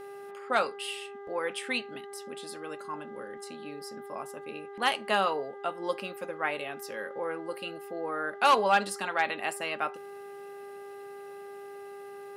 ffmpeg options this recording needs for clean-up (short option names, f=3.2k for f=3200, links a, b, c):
-af "bandreject=f=400.8:t=h:w=4,bandreject=f=801.6:t=h:w=4,bandreject=f=1.2024k:t=h:w=4,bandreject=f=1.6032k:t=h:w=4,bandreject=f=2.004k:t=h:w=4"